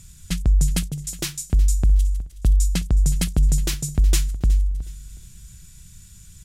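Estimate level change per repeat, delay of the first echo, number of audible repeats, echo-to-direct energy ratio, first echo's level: −10.5 dB, 367 ms, 2, −18.0 dB, −18.5 dB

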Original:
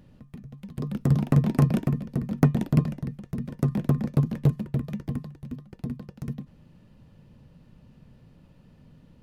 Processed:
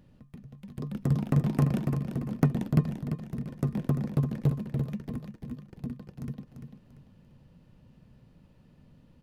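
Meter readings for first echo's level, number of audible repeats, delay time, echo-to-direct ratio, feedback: −8.0 dB, 3, 343 ms, −7.5 dB, 32%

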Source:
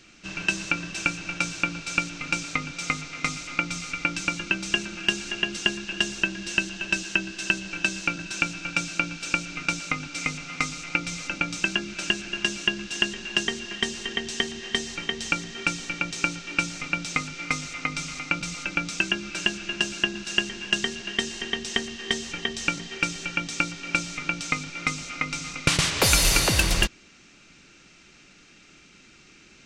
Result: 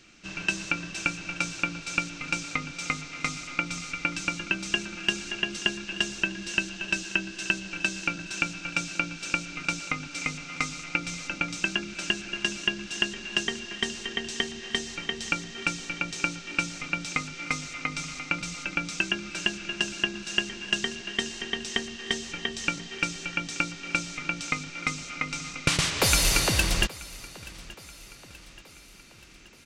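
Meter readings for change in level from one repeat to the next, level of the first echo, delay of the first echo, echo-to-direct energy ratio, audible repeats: −5.5 dB, −20.0 dB, 878 ms, −18.5 dB, 3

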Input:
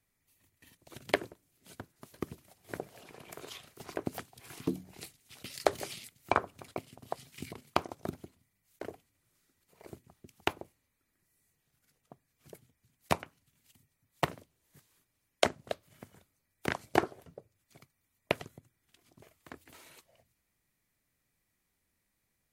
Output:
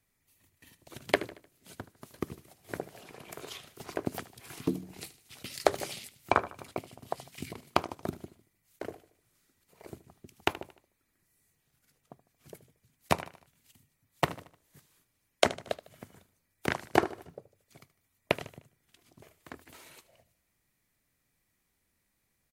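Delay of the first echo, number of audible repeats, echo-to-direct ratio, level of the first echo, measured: 76 ms, 3, −16.0 dB, −17.0 dB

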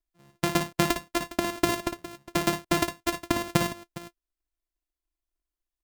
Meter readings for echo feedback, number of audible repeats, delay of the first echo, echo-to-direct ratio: repeats not evenly spaced, 2, 57 ms, −8.0 dB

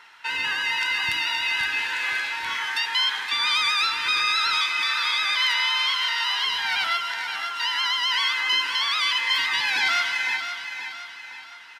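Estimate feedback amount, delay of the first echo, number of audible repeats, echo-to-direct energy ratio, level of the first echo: 46%, 519 ms, 4, −7.5 dB, −8.5 dB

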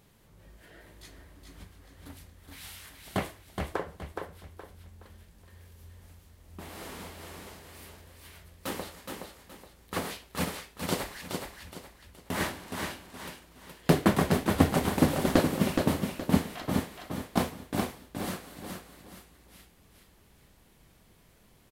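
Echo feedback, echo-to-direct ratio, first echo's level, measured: 32%, −4.5 dB, −5.0 dB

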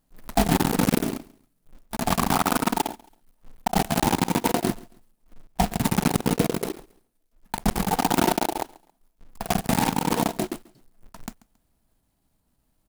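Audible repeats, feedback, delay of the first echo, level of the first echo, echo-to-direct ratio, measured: 2, 31%, 137 ms, −22.5 dB, −22.0 dB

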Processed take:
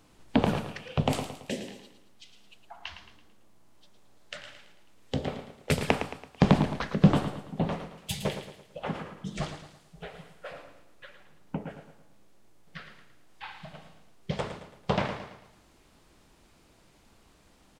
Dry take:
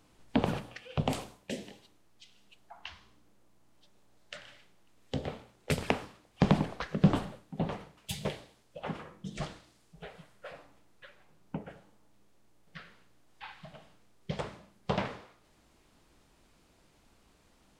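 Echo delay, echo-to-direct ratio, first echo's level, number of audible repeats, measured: 111 ms, −9.0 dB, −10.0 dB, 4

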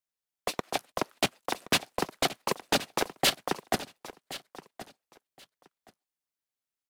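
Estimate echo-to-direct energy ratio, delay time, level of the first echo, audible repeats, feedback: −15.5 dB, 1,073 ms, −15.5 dB, 2, 18%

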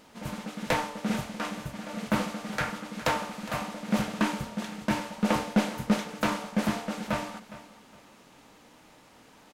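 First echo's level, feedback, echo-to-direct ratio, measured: −16.0 dB, 30%, −15.5 dB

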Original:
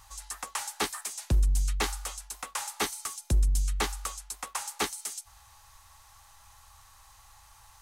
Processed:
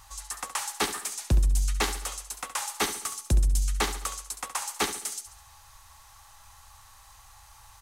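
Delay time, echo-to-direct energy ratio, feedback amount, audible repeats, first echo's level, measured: 69 ms, −10.0 dB, 45%, 4, −11.0 dB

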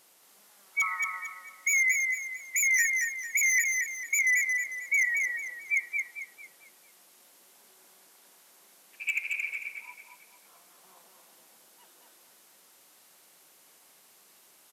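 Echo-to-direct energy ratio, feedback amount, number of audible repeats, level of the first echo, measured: −3.5 dB, 36%, 4, −4.0 dB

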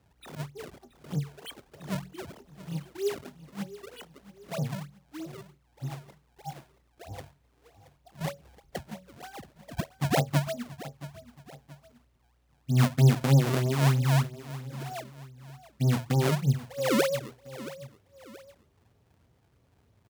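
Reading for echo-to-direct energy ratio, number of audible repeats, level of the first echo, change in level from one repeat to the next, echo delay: −15.5 dB, 2, −16.0 dB, −7.5 dB, 676 ms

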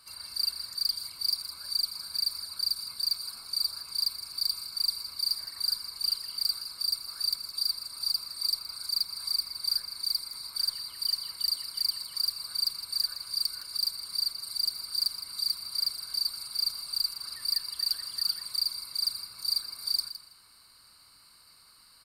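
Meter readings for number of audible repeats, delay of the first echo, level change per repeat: 2, 163 ms, −15.5 dB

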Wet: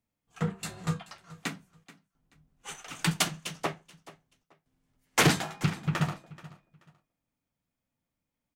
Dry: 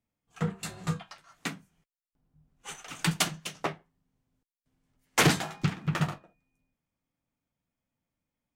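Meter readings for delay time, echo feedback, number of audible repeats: 431 ms, 24%, 2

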